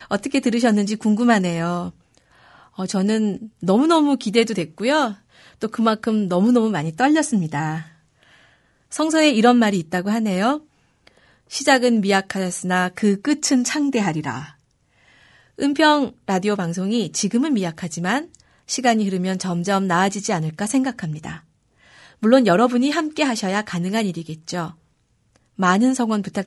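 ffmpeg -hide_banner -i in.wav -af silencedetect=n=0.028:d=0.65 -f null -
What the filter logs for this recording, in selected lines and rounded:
silence_start: 1.90
silence_end: 2.79 | silence_duration: 0.89
silence_start: 7.82
silence_end: 8.92 | silence_duration: 1.10
silence_start: 14.49
silence_end: 15.59 | silence_duration: 1.10
silence_start: 21.38
silence_end: 22.23 | silence_duration: 0.85
silence_start: 24.70
silence_end: 25.59 | silence_duration: 0.89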